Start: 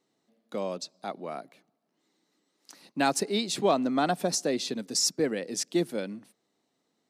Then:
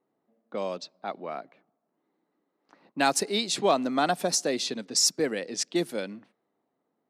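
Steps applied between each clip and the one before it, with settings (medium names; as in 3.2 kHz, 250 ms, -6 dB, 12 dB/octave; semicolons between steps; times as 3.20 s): level-controlled noise filter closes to 1.1 kHz, open at -25 dBFS; bass shelf 420 Hz -7 dB; trim +3.5 dB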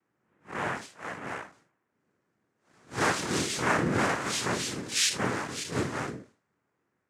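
spectral blur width 118 ms; noise-vocoded speech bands 3; trim +2 dB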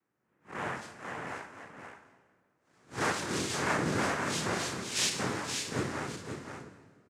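delay 524 ms -7 dB; on a send at -9 dB: reverberation RT60 1.7 s, pre-delay 34 ms; on the sum: trim -4.5 dB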